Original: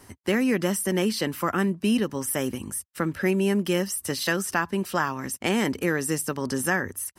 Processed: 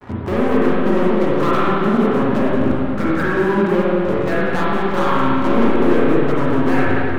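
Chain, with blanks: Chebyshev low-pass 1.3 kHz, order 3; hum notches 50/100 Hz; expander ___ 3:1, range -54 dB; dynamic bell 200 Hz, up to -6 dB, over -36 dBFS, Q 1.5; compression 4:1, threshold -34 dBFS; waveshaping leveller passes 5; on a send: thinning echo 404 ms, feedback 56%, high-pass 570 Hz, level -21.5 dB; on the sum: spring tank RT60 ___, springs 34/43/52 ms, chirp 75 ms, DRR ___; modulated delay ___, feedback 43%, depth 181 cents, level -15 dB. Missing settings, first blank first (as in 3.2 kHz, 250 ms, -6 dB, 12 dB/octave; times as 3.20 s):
-53 dBFS, 2.6 s, -8 dB, 185 ms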